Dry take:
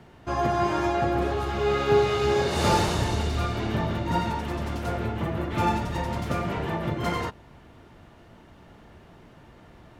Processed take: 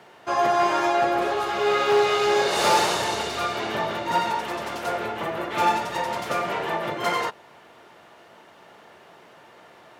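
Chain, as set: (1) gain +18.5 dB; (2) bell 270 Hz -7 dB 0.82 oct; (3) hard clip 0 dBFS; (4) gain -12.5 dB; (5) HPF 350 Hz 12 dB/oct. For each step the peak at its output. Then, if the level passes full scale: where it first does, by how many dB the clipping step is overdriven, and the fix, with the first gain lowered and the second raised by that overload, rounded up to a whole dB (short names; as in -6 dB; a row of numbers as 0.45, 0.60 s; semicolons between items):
+9.0, +8.0, 0.0, -12.5, -8.0 dBFS; step 1, 8.0 dB; step 1 +10.5 dB, step 4 -4.5 dB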